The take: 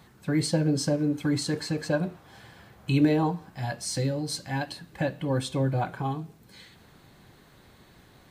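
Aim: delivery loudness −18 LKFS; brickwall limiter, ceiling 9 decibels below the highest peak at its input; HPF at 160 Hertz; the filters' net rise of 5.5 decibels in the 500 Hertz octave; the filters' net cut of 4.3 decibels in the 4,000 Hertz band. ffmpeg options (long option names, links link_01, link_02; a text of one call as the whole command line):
ffmpeg -i in.wav -af "highpass=160,equalizer=frequency=500:width_type=o:gain=6.5,equalizer=frequency=4000:width_type=o:gain=-5,volume=11.5dB,alimiter=limit=-7.5dB:level=0:latency=1" out.wav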